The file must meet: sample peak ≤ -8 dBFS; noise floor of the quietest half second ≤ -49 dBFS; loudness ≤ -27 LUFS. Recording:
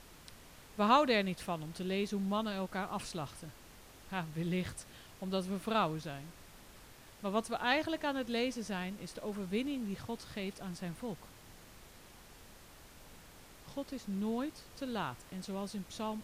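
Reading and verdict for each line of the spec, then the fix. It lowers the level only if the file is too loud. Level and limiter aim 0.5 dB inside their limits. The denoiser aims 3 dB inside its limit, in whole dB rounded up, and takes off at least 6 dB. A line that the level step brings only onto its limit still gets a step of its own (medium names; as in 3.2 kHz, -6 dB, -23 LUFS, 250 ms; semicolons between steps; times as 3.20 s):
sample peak -14.0 dBFS: pass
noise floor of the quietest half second -56 dBFS: pass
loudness -36.5 LUFS: pass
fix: none needed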